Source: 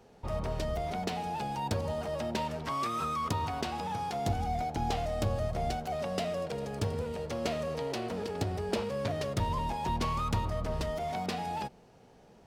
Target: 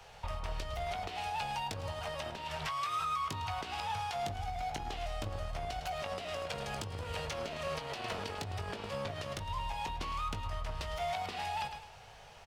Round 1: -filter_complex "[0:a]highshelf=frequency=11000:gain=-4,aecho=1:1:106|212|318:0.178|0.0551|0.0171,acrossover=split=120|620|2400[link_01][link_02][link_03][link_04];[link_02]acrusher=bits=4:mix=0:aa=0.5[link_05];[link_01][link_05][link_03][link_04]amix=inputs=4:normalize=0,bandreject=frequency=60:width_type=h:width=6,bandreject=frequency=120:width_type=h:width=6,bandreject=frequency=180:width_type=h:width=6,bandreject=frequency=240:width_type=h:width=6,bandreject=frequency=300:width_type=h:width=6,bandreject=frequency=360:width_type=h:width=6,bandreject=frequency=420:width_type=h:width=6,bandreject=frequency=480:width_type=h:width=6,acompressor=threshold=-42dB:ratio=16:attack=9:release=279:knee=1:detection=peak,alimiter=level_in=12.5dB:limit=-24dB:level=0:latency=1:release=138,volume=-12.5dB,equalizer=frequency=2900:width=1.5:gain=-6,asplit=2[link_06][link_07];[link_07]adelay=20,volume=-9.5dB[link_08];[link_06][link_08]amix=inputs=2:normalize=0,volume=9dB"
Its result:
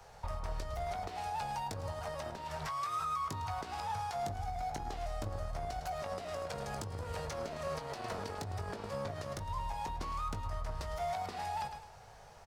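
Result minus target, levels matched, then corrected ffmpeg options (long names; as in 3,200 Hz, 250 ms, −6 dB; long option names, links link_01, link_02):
4,000 Hz band −6.0 dB
-filter_complex "[0:a]highshelf=frequency=11000:gain=-4,aecho=1:1:106|212|318:0.178|0.0551|0.0171,acrossover=split=120|620|2400[link_01][link_02][link_03][link_04];[link_02]acrusher=bits=4:mix=0:aa=0.5[link_05];[link_01][link_05][link_03][link_04]amix=inputs=4:normalize=0,bandreject=frequency=60:width_type=h:width=6,bandreject=frequency=120:width_type=h:width=6,bandreject=frequency=180:width_type=h:width=6,bandreject=frequency=240:width_type=h:width=6,bandreject=frequency=300:width_type=h:width=6,bandreject=frequency=360:width_type=h:width=6,bandreject=frequency=420:width_type=h:width=6,bandreject=frequency=480:width_type=h:width=6,acompressor=threshold=-42dB:ratio=16:attack=9:release=279:knee=1:detection=peak,alimiter=level_in=12.5dB:limit=-24dB:level=0:latency=1:release=138,volume=-12.5dB,equalizer=frequency=2900:width=1.5:gain=5,asplit=2[link_06][link_07];[link_07]adelay=20,volume=-9.5dB[link_08];[link_06][link_08]amix=inputs=2:normalize=0,volume=9dB"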